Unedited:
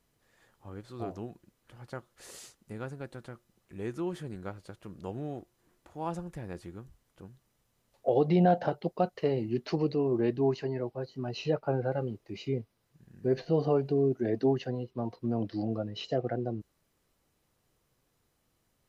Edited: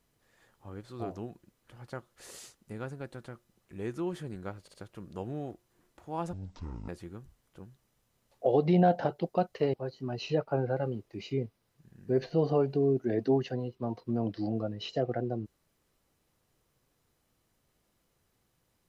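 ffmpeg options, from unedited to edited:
-filter_complex "[0:a]asplit=6[a][b][c][d][e][f];[a]atrim=end=4.682[g];[b]atrim=start=4.618:end=4.682[h];[c]atrim=start=4.618:end=6.214[i];[d]atrim=start=6.21:end=6.51,asetpts=PTS-STARTPTS,asetrate=23814,aresample=44100[j];[e]atrim=start=6.506:end=9.362[k];[f]atrim=start=10.888[l];[g][h]acrossfade=d=0.004:c1=hsin:c2=hsin[m];[m][i]acrossfade=d=0.004:c1=hsin:c2=hsin[n];[n][j]acrossfade=d=0.004:c1=hsin:c2=hsin[o];[o][k]acrossfade=d=0.004:c1=hsin:c2=hsin[p];[p][l]acrossfade=d=0.004:c1=hsin:c2=hsin"

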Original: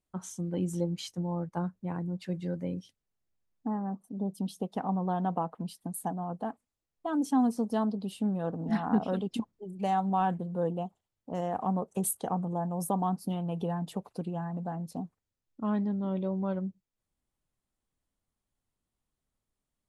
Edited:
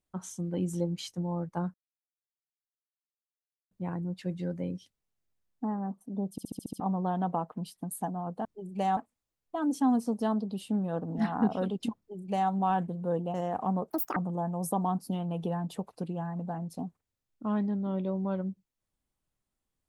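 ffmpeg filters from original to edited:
-filter_complex "[0:a]asplit=14[a][b][c][d][e][f][g][h][i][j][k][l][m][n];[a]atrim=end=1.74,asetpts=PTS-STARTPTS,afade=t=out:st=1.736:d=0.004:c=hsin,apad=pad_dur=1.97[o];[b]atrim=start=1.74:end=4.412,asetpts=PTS-STARTPTS,afade=t=in:d=0.004:c=hsin[p];[c]atrim=start=4.338:end=4.412[q];[d]atrim=start=4.338:end=4.412[r];[e]atrim=start=4.338:end=4.412[s];[f]atrim=start=4.338:end=4.412[t];[g]atrim=start=4.338:end=4.412[u];[h]atrim=start=4.338:end=4.412[v];[i]atrim=start=4.828:end=6.482[w];[j]atrim=start=9.488:end=10.012[x];[k]atrim=start=6.478:end=10.852[y];[l]atrim=start=11.338:end=11.904[z];[m]atrim=start=11.9:end=12.34,asetpts=PTS-STARTPTS,asetrate=73647,aresample=44100,atrim=end_sample=11619,asetpts=PTS-STARTPTS[aa];[n]atrim=start=12.336[ab];[o][p]concat=n=2:v=0:a=1[ac];[ac][q]acrossfade=d=0.004:c1=hsin:c2=hsin[ad];[ad][r]acrossfade=d=0.004:c1=hsin:c2=hsin[ae];[ae][s]acrossfade=d=0.004:c1=hsin:c2=hsin[af];[af][t]acrossfade=d=0.004:c1=hsin:c2=hsin[ag];[ag][u]acrossfade=d=0.004:c1=hsin:c2=hsin[ah];[ah][v]acrossfade=d=0.004:c1=hsin:c2=hsin[ai];[ai][w]acrossfade=d=0.004:c1=hsin:c2=hsin[aj];[aj][x]acrossfade=d=0.004:c1=hsin:c2=hsin[ak];[ak][y]acrossfade=d=0.004:c1=hsin:c2=hsin[al];[al][z]acrossfade=d=0.004:c1=hsin:c2=hsin[am];[am][aa]acrossfade=d=0.004:c1=hsin:c2=hsin[an];[an][ab]acrossfade=d=0.004:c1=hsin:c2=hsin"

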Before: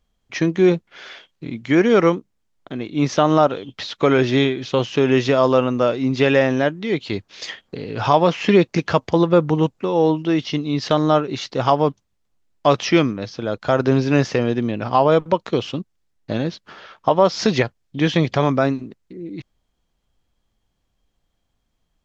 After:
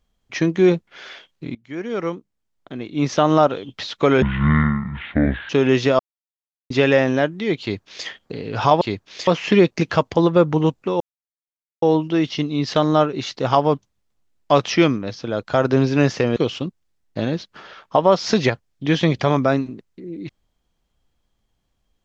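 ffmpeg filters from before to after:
-filter_complex "[0:a]asplit=10[a][b][c][d][e][f][g][h][i][j];[a]atrim=end=1.55,asetpts=PTS-STARTPTS,afade=t=out:st=1.546:d=0.004:c=hsin:silence=0.0749894[k];[b]atrim=start=1.55:end=4.224,asetpts=PTS-STARTPTS,afade=t=in:d=1.76:silence=0.0749894[l];[c]atrim=start=4.22:end=4.92,asetpts=PTS-STARTPTS,asetrate=24255,aresample=44100,atrim=end_sample=56127,asetpts=PTS-STARTPTS[m];[d]atrim=start=4.916:end=5.42,asetpts=PTS-STARTPTS,afade=t=out:st=0.5:d=0.004:c=hsin[n];[e]atrim=start=5.42:end=6.13,asetpts=PTS-STARTPTS,volume=0[o];[f]atrim=start=6.13:end=8.242,asetpts=PTS-STARTPTS,afade=t=in:d=0.004:c=hsin[p];[g]atrim=start=7.038:end=7.502[q];[h]atrim=start=8.238:end=9.97,asetpts=PTS-STARTPTS,afade=t=out:st=1.728:d=0.004:c=hsin,apad=pad_dur=0.82[r];[i]atrim=start=9.97:end=14.512,asetpts=PTS-STARTPTS,afade=t=in:d=0.004:c=hsin[s];[j]atrim=start=15.488[t];[k][l]concat=n=2:v=0:a=1[u];[u][m]acrossfade=d=0.004:c1=hsin:c2=hsin[v];[n][o][p]concat=n=3:v=0:a=1[w];[v][w]acrossfade=d=0.004:c1=hsin:c2=hsin[x];[x][q]acrossfade=d=0.004:c1=hsin:c2=hsin[y];[r][s]concat=n=2:v=0:a=1[z];[y][z]acrossfade=d=0.004:c1=hsin:c2=hsin[aa];[aa][t]acrossfade=d=0.004:c1=hsin:c2=hsin"

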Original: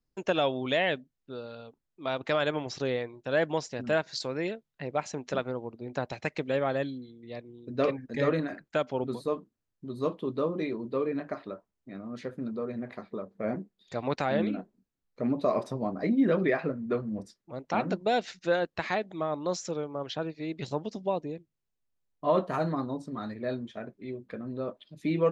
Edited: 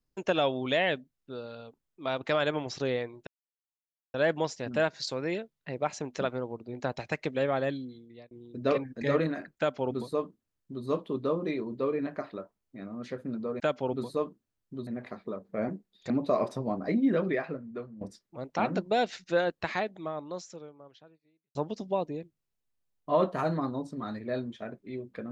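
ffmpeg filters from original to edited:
-filter_complex "[0:a]asplit=8[a][b][c][d][e][f][g][h];[a]atrim=end=3.27,asetpts=PTS-STARTPTS,afade=t=out:st=3.266:d=0.004:c=hsin,apad=pad_dur=0.87[i];[b]atrim=start=3.27:end=7.44,asetpts=PTS-STARTPTS,afade=t=in:d=0.004:c=hsin,afade=t=out:st=3.86:d=0.31[j];[c]atrim=start=7.44:end=12.732,asetpts=PTS-STARTPTS,afade=t=in:d=0.004:c=hsin[k];[d]atrim=start=8.708:end=9.982[l];[e]atrim=start=12.728:end=13.962[m];[f]atrim=start=15.248:end=17.16,asetpts=PTS-STARTPTS,afade=t=out:st=0.782:d=1.13:silence=0.177828[n];[g]atrim=start=17.16:end=20.7,asetpts=PTS-STARTPTS,afade=t=in:d=0.004:c=hsin:silence=0.177828,afade=t=out:st=1.66:d=1.88:c=qua[o];[h]atrim=start=20.7,asetpts=PTS-STARTPTS,afade=t=in:d=0.004:c=hsin[p];[i][j][k]concat=n=3:v=0:a=1[q];[q][l]acrossfade=d=0.004:c1=hsin:c2=hsin[r];[r][m]acrossfade=d=0.004:c1=hsin:c2=hsin[s];[n][o][p]concat=n=3:v=0:a=1[t];[s][t]acrossfade=d=0.004:c1=hsin:c2=hsin"

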